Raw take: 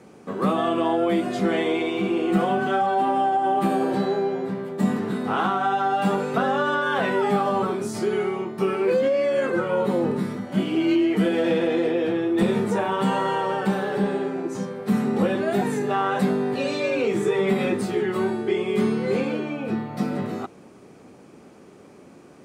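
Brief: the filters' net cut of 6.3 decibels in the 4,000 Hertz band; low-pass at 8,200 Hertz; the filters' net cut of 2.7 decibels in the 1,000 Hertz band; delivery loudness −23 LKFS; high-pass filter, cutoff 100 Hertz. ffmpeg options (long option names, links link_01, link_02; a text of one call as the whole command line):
ffmpeg -i in.wav -af "highpass=100,lowpass=8200,equalizer=frequency=1000:width_type=o:gain=-3.5,equalizer=frequency=4000:width_type=o:gain=-8.5,volume=1.5dB" out.wav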